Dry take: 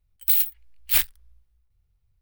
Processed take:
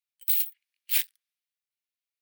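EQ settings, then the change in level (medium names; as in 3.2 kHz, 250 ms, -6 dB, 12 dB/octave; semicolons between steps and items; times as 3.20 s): ladder high-pass 1.6 kHz, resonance 20%; 0.0 dB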